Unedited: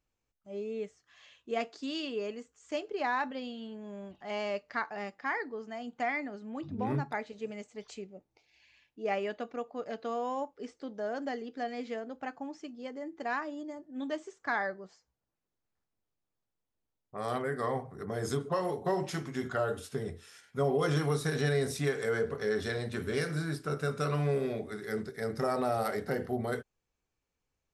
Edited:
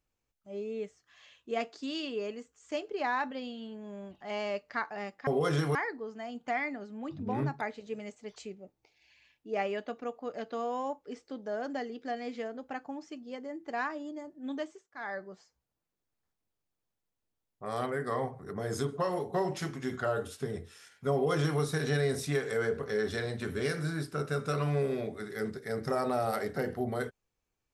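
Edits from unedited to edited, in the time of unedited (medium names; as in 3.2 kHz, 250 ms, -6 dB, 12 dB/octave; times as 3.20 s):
14.08–14.80 s: dip -17 dB, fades 0.34 s
20.65–21.13 s: copy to 5.27 s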